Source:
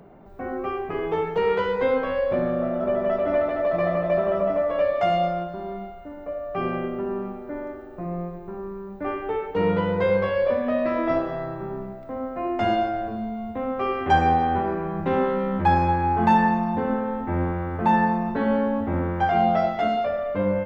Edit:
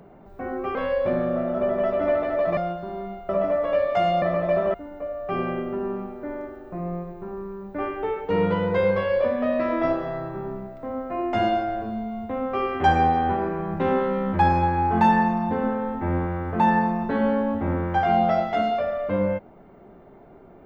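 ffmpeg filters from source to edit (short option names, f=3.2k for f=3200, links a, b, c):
-filter_complex "[0:a]asplit=6[a][b][c][d][e][f];[a]atrim=end=0.752[g];[b]atrim=start=2.008:end=3.832[h];[c]atrim=start=5.278:end=6.002[i];[d]atrim=start=4.348:end=5.282[j];[e]atrim=start=3.828:end=4.352[k];[f]atrim=start=5.998[l];[g][h]acrossfade=d=0.004:c1=hsin:c2=hsin[m];[m][i]acrossfade=d=0.004:c1=hsin:c2=hsin[n];[n][j]acrossfade=d=0.004:c1=hsin:c2=hsin[o];[o][k]acrossfade=d=0.004:c1=hsin:c2=hsin[p];[p][l]acrossfade=d=0.004:c1=hsin:c2=hsin"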